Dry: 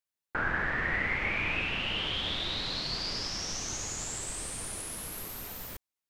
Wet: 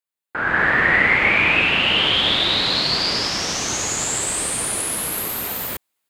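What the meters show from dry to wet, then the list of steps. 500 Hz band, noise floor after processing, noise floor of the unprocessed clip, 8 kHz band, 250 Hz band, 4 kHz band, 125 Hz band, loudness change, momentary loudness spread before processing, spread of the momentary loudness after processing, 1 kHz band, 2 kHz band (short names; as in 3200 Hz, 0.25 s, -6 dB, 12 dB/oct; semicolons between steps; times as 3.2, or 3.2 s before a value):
+14.5 dB, under -85 dBFS, under -85 dBFS, +14.0 dB, +13.0 dB, +15.0 dB, +9.0 dB, +14.5 dB, 9 LU, 9 LU, +14.0 dB, +14.5 dB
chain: HPF 200 Hz 6 dB/oct; bell 5700 Hz -7 dB 0.36 oct; AGC gain up to 16 dB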